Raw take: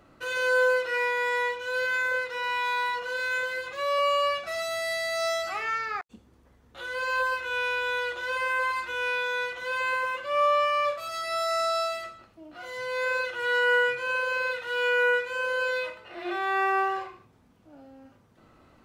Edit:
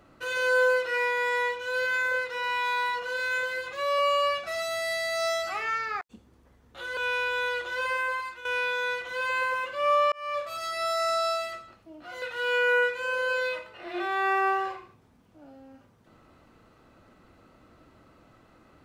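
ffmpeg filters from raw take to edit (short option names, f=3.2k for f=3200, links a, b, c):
-filter_complex "[0:a]asplit=5[a][b][c][d][e];[a]atrim=end=6.972[f];[b]atrim=start=7.478:end=8.96,asetpts=PTS-STARTPTS,afade=t=out:st=0.932:d=0.55:silence=0.251189[g];[c]atrim=start=8.96:end=10.63,asetpts=PTS-STARTPTS,afade=t=in:d=0.004:c=hsin:silence=0.251189,afade=t=out:st=1.666:d=0.004:c=hsin[h];[d]atrim=start=10.63:end=12.732,asetpts=PTS-STARTPTS,afade=t=in:d=0.38[i];[e]atrim=start=14.528[j];[g][h][i]concat=n=3:v=0:a=1[k];[f][k]acrossfade=d=0.004:c1=hsin:c2=hsin[l];[l][j]acrossfade=d=0.004:c1=hsin:c2=hsin"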